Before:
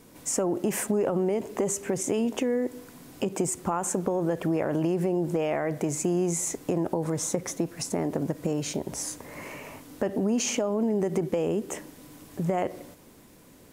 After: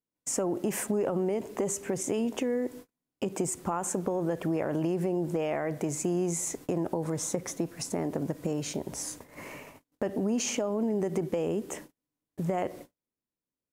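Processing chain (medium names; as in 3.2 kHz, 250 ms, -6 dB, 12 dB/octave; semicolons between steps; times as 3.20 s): gate -41 dBFS, range -39 dB; trim -3 dB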